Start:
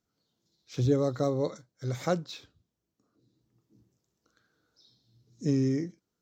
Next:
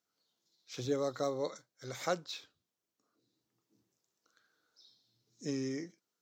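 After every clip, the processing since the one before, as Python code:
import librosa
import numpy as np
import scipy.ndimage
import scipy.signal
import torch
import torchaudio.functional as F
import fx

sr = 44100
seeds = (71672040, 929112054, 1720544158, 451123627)

y = fx.highpass(x, sr, hz=820.0, slope=6)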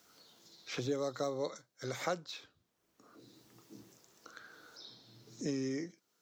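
y = fx.band_squash(x, sr, depth_pct=70)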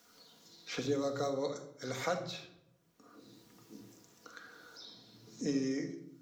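y = fx.room_shoebox(x, sr, seeds[0], volume_m3=2100.0, walls='furnished', distance_m=1.8)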